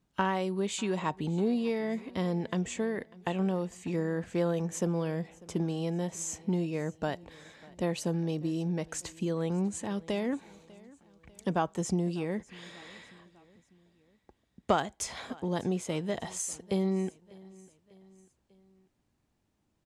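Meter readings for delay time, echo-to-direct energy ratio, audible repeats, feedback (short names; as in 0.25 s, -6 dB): 0.596 s, -21.5 dB, 3, 50%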